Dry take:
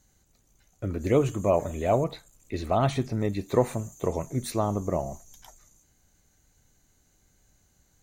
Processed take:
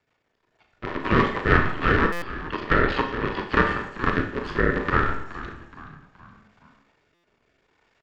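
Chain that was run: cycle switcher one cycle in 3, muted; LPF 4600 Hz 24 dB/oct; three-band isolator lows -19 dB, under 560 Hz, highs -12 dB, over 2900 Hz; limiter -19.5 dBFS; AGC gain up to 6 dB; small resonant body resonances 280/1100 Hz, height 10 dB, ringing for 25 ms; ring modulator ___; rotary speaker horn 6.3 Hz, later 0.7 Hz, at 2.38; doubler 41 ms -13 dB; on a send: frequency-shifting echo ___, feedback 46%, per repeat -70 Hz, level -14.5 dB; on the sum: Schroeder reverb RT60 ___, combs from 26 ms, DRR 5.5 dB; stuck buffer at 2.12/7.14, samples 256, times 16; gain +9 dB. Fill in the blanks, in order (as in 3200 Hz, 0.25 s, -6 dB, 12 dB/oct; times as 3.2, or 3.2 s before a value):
680 Hz, 0.422 s, 0.59 s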